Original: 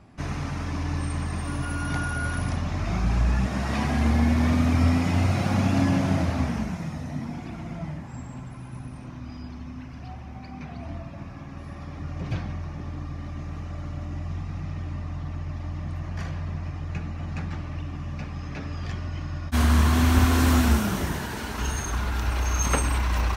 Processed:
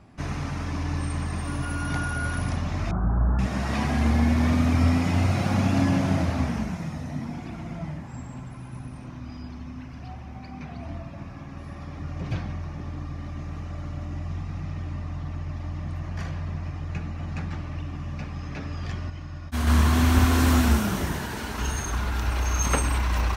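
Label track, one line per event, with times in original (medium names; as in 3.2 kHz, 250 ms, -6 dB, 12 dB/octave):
2.910000	3.390000	Chebyshev low-pass 1.5 kHz, order 5
19.100000	19.670000	gain -5 dB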